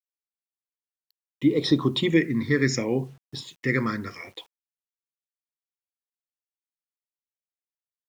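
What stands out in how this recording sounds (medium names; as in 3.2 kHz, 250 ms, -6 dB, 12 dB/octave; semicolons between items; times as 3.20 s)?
phasing stages 6, 0.7 Hz, lowest notch 750–2100 Hz; a quantiser's noise floor 10-bit, dither none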